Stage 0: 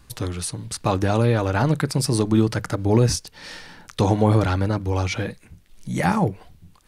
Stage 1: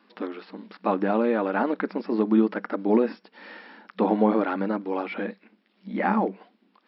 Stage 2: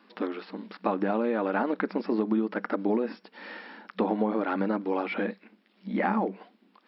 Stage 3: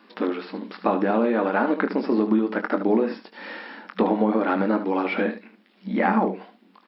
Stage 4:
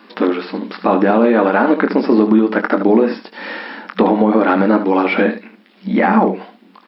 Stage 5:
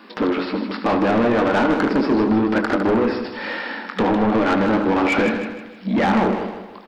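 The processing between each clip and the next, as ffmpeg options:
ffmpeg -i in.wav -filter_complex "[0:a]afftfilt=real='re*between(b*sr/4096,190,5500)':imag='im*between(b*sr/4096,190,5500)':win_size=4096:overlap=0.75,acrossover=split=2700[link_01][link_02];[link_02]acompressor=threshold=-50dB:ratio=4:attack=1:release=60[link_03];[link_01][link_03]amix=inputs=2:normalize=0,bass=frequency=250:gain=2,treble=frequency=4000:gain=-12,volume=-1.5dB" out.wav
ffmpeg -i in.wav -af "acompressor=threshold=-24dB:ratio=6,volume=1.5dB" out.wav
ffmpeg -i in.wav -af "aecho=1:1:22|75:0.355|0.316,volume=5dB" out.wav
ffmpeg -i in.wav -af "alimiter=level_in=10.5dB:limit=-1dB:release=50:level=0:latency=1,volume=-1dB" out.wav
ffmpeg -i in.wav -af "asoftclip=type=tanh:threshold=-14dB,aecho=1:1:156|312|468|624|780:0.398|0.163|0.0669|0.0274|0.0112" out.wav

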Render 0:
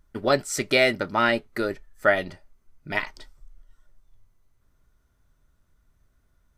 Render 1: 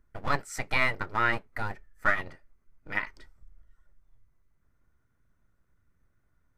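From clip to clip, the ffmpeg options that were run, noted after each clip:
ffmpeg -i in.wav -filter_complex "[0:a]highshelf=frequency=2600:width_type=q:width=1.5:gain=-6.5,acrossover=split=770[link_01][link_02];[link_01]aeval=exprs='abs(val(0))':channel_layout=same[link_03];[link_03][link_02]amix=inputs=2:normalize=0,volume=-4dB" out.wav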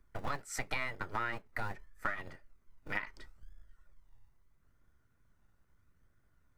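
ffmpeg -i in.wav -filter_complex "[0:a]acrossover=split=200|1100[link_01][link_02][link_03];[link_01]acrusher=samples=37:mix=1:aa=0.000001:lfo=1:lforange=22.2:lforate=0.77[link_04];[link_04][link_02][link_03]amix=inputs=3:normalize=0,acompressor=threshold=-32dB:ratio=10" out.wav

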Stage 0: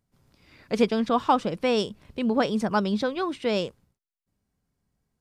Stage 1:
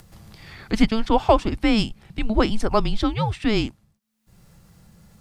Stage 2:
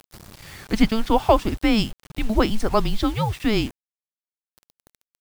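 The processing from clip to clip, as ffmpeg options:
ffmpeg -i in.wav -af "afreqshift=-220,acompressor=mode=upward:threshold=-38dB:ratio=2.5,volume=5dB" out.wav
ffmpeg -i in.wav -af "acrusher=bits=6:mix=0:aa=0.000001" out.wav

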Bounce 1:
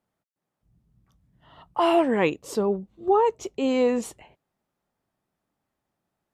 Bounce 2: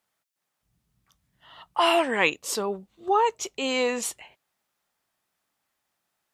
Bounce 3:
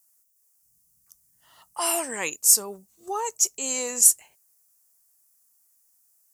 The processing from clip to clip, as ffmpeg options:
ffmpeg -i in.wav -af "tiltshelf=frequency=810:gain=-9.5" out.wav
ffmpeg -i in.wav -af "aexciter=amount=15.2:drive=5.7:freq=5400,volume=-8dB" out.wav

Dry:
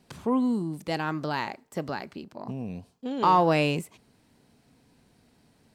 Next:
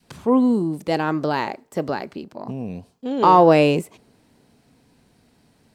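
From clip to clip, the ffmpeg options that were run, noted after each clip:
ffmpeg -i in.wav -af "adynamicequalizer=threshold=0.0141:dfrequency=450:dqfactor=0.75:tfrequency=450:tqfactor=0.75:attack=5:release=100:ratio=0.375:range=4:mode=boostabove:tftype=bell,volume=3.5dB" out.wav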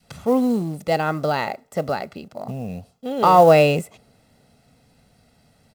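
ffmpeg -i in.wav -af "aecho=1:1:1.5:0.57,acrusher=bits=7:mode=log:mix=0:aa=0.000001" out.wav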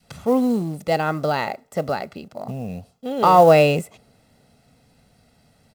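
ffmpeg -i in.wav -af anull out.wav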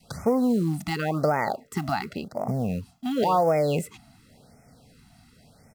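ffmpeg -i in.wav -af "acompressor=threshold=-21dB:ratio=12,afftfilt=real='re*(1-between(b*sr/1024,430*pow(3600/430,0.5+0.5*sin(2*PI*0.92*pts/sr))/1.41,430*pow(3600/430,0.5+0.5*sin(2*PI*0.92*pts/sr))*1.41))':imag='im*(1-between(b*sr/1024,430*pow(3600/430,0.5+0.5*sin(2*PI*0.92*pts/sr))/1.41,430*pow(3600/430,0.5+0.5*sin(2*PI*0.92*pts/sr))*1.41))':win_size=1024:overlap=0.75,volume=3dB" out.wav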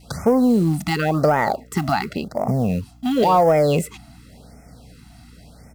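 ffmpeg -i in.wav -filter_complex "[0:a]aeval=exprs='val(0)+0.002*(sin(2*PI*60*n/s)+sin(2*PI*2*60*n/s)/2+sin(2*PI*3*60*n/s)/3+sin(2*PI*4*60*n/s)/4+sin(2*PI*5*60*n/s)/5)':channel_layout=same,asplit=2[link_01][link_02];[link_02]asoftclip=type=tanh:threshold=-19.5dB,volume=-5.5dB[link_03];[link_01][link_03]amix=inputs=2:normalize=0,volume=3.5dB" out.wav

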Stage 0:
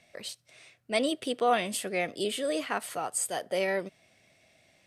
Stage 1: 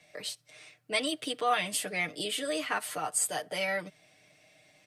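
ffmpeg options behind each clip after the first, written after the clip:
ffmpeg -i in.wav -filter_complex "[0:a]acrossover=split=200|830|3500[link_01][link_02][link_03][link_04];[link_02]acompressor=threshold=-39dB:ratio=6[link_05];[link_01][link_05][link_03][link_04]amix=inputs=4:normalize=0,lowshelf=frequency=130:gain=-5,aecho=1:1:6.6:0.77" out.wav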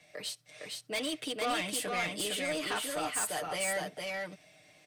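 ffmpeg -i in.wav -af "asoftclip=type=tanh:threshold=-29dB,aecho=1:1:459:0.708" out.wav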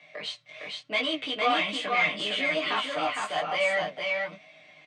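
ffmpeg -i in.wav -filter_complex "[0:a]highpass=frequency=130:width=0.5412,highpass=frequency=130:width=1.3066,equalizer=frequency=400:width_type=q:width=4:gain=-4,equalizer=frequency=670:width_type=q:width=4:gain=6,equalizer=frequency=1100:width_type=q:width=4:gain=9,equalizer=frequency=2200:width_type=q:width=4:gain=8,equalizer=frequency=3200:width_type=q:width=4:gain=6,equalizer=frequency=5300:width_type=q:width=4:gain=-7,lowpass=frequency=5700:width=0.5412,lowpass=frequency=5700:width=1.3066,asplit=2[link_01][link_02];[link_02]adelay=19,volume=-3dB[link_03];[link_01][link_03]amix=inputs=2:normalize=0,flanger=delay=3.4:depth=5.5:regen=72:speed=1.1:shape=sinusoidal,volume=5dB" out.wav

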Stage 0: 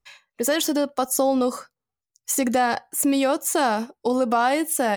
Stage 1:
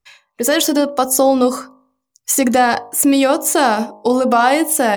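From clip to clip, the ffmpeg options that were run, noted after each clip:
ffmpeg -i in.wav -af "bandreject=frequency=51.99:width_type=h:width=4,bandreject=frequency=103.98:width_type=h:width=4,bandreject=frequency=155.97:width_type=h:width=4,bandreject=frequency=207.96:width_type=h:width=4,bandreject=frequency=259.95:width_type=h:width=4,bandreject=frequency=311.94:width_type=h:width=4,bandreject=frequency=363.93:width_type=h:width=4,bandreject=frequency=415.92:width_type=h:width=4,bandreject=frequency=467.91:width_type=h:width=4,bandreject=frequency=519.9:width_type=h:width=4,bandreject=frequency=571.89:width_type=h:width=4,bandreject=frequency=623.88:width_type=h:width=4,bandreject=frequency=675.87:width_type=h:width=4,bandreject=frequency=727.86:width_type=h:width=4,bandreject=frequency=779.85:width_type=h:width=4,bandreject=frequency=831.84:width_type=h:width=4,bandreject=frequency=883.83:width_type=h:width=4,bandreject=frequency=935.82:width_type=h:width=4,bandreject=frequency=987.81:width_type=h:width=4,bandreject=frequency=1039.8:width_type=h:width=4,bandreject=frequency=1091.79:width_type=h:width=4,bandreject=frequency=1143.78:width_type=h:width=4,bandreject=frequency=1195.77:width_type=h:width=4,dynaudnorm=framelen=260:gausssize=3:maxgain=6dB,volume=2.5dB" out.wav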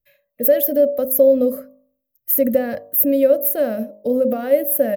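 ffmpeg -i in.wav -af "firequalizer=gain_entry='entry(260,0);entry(370,-14);entry(570,10);entry(820,-27);entry(1700,-10);entry(3200,-16);entry(5000,-21);entry(8000,-23);entry(13000,13)':delay=0.05:min_phase=1,volume=-4dB" out.wav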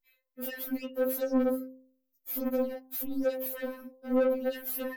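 ffmpeg -i in.wav -filter_complex "[0:a]acrossover=split=2800[link_01][link_02];[link_02]alimiter=limit=-11dB:level=0:latency=1:release=165[link_03];[link_01][link_03]amix=inputs=2:normalize=0,asoftclip=type=tanh:threshold=-21.5dB,afftfilt=real='re*3.46*eq(mod(b,12),0)':imag='im*3.46*eq(mod(b,12),0)':win_size=2048:overlap=0.75,volume=-6.5dB" out.wav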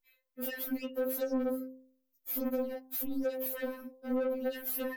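ffmpeg -i in.wav -af "acompressor=threshold=-29dB:ratio=6" out.wav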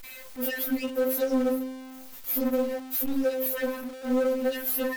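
ffmpeg -i in.wav -filter_complex "[0:a]aeval=exprs='val(0)+0.5*0.00631*sgn(val(0))':channel_layout=same,asplit=2[link_01][link_02];[link_02]acrusher=bits=3:mode=log:mix=0:aa=0.000001,volume=-7dB[link_03];[link_01][link_03]amix=inputs=2:normalize=0,volume=3dB" out.wav

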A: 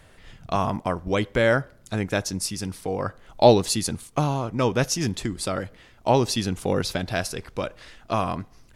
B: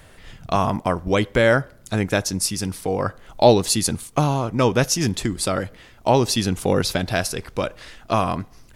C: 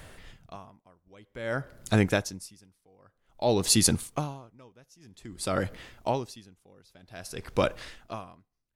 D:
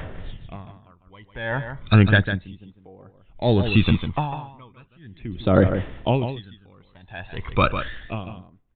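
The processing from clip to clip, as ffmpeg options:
ffmpeg -i in.wav -filter_complex "[0:a]highshelf=frequency=11000:gain=6,asplit=2[link_01][link_02];[link_02]alimiter=limit=-12dB:level=0:latency=1:release=404,volume=1dB[link_03];[link_01][link_03]amix=inputs=2:normalize=0,volume=-2dB" out.wav
ffmpeg -i in.wav -af "aeval=exprs='val(0)*pow(10,-38*(0.5-0.5*cos(2*PI*0.52*n/s))/20)':channel_layout=same" out.wav
ffmpeg -i in.wav -af "aphaser=in_gain=1:out_gain=1:delay=1.2:decay=0.69:speed=0.35:type=triangular,aecho=1:1:150:0.355,aresample=8000,aresample=44100,volume=5.5dB" out.wav

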